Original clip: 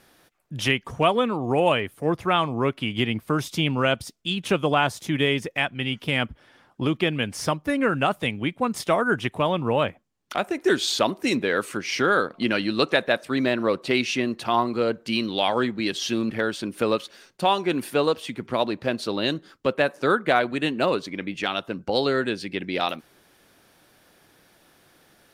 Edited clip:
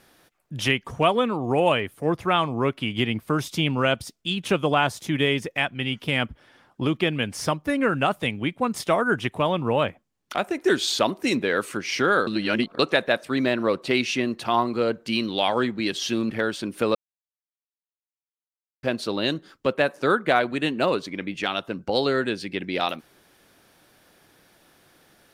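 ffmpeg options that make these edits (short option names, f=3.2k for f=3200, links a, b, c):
-filter_complex "[0:a]asplit=5[a][b][c][d][e];[a]atrim=end=12.272[f];[b]atrim=start=12.268:end=12.792,asetpts=PTS-STARTPTS,areverse[g];[c]atrim=start=12.788:end=16.95,asetpts=PTS-STARTPTS,afade=t=out:st=4.158:d=0.004:c=hsin[h];[d]atrim=start=16.95:end=18.83,asetpts=PTS-STARTPTS,volume=0[i];[e]atrim=start=18.83,asetpts=PTS-STARTPTS,afade=t=in:d=0.004:c=hsin[j];[f][g]acrossfade=d=0.004:c1=hsin:c2=hsin[k];[h][i][j]concat=n=3:v=0:a=1[l];[k][l]acrossfade=d=0.004:c1=hsin:c2=hsin"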